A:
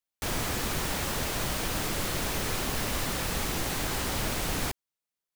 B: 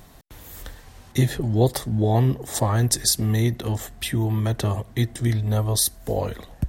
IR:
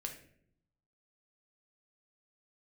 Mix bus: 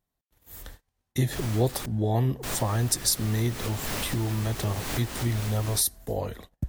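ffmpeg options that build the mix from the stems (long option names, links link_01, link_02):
-filter_complex "[0:a]adelay=1100,volume=0.5dB,asplit=3[link_01][link_02][link_03];[link_01]atrim=end=1.86,asetpts=PTS-STARTPTS,afade=type=out:start_time=1.856:duration=0.004:curve=hsin[link_04];[link_02]atrim=start=1.86:end=2.43,asetpts=PTS-STARTPTS,volume=0[link_05];[link_03]atrim=start=2.43,asetpts=PTS-STARTPTS,afade=type=in:duration=0.004:curve=hsin[link_06];[link_04][link_05][link_06]concat=n=3:v=0:a=1[link_07];[1:a]highshelf=frequency=11000:gain=6,volume=-5.5dB,asplit=2[link_08][link_09];[link_09]apad=whole_len=289090[link_10];[link_07][link_10]sidechaincompress=threshold=-32dB:ratio=10:attack=6.9:release=249[link_11];[link_11][link_08]amix=inputs=2:normalize=0,agate=range=-30dB:threshold=-44dB:ratio=16:detection=peak"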